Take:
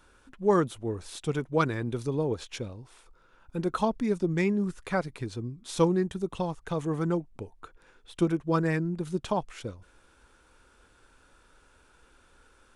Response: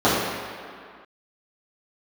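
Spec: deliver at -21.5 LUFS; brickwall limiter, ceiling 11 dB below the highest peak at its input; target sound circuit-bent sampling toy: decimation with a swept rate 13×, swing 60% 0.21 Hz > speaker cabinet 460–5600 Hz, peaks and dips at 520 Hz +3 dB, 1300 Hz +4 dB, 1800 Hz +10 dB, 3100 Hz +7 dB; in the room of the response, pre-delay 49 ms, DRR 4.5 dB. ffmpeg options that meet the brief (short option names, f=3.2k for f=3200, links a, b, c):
-filter_complex "[0:a]alimiter=limit=-22dB:level=0:latency=1,asplit=2[a][b];[1:a]atrim=start_sample=2205,adelay=49[c];[b][c]afir=irnorm=-1:irlink=0,volume=-28dB[d];[a][d]amix=inputs=2:normalize=0,acrusher=samples=13:mix=1:aa=0.000001:lfo=1:lforange=7.8:lforate=0.21,highpass=460,equalizer=f=520:t=q:w=4:g=3,equalizer=f=1.3k:t=q:w=4:g=4,equalizer=f=1.8k:t=q:w=4:g=10,equalizer=f=3.1k:t=q:w=4:g=7,lowpass=f=5.6k:w=0.5412,lowpass=f=5.6k:w=1.3066,volume=11.5dB"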